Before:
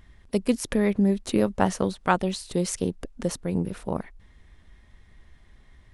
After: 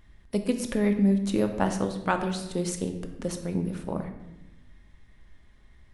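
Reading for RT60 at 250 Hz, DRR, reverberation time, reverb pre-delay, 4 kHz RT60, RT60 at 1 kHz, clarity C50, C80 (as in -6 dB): 1.6 s, 5.5 dB, 1.0 s, 3 ms, 0.75 s, 0.90 s, 8.5 dB, 10.5 dB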